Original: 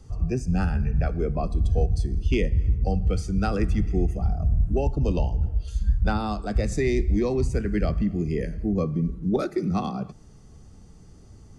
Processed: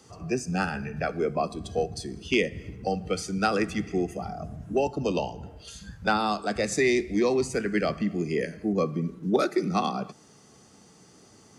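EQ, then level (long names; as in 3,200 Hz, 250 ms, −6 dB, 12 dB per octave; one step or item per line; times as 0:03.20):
high-pass filter 180 Hz 12 dB per octave
spectral tilt +2.5 dB per octave
high-shelf EQ 5,500 Hz −8.5 dB
+5.0 dB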